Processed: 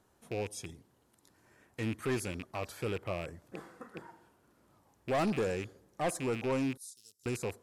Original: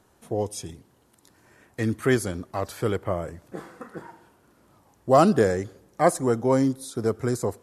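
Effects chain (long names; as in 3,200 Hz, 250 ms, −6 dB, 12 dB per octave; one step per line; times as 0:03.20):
loose part that buzzes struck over −34 dBFS, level −22 dBFS
0:06.77–0:07.26: inverse Chebyshev high-pass filter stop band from 2,500 Hz, stop band 40 dB
soft clipping −18 dBFS, distortion −10 dB
level −8 dB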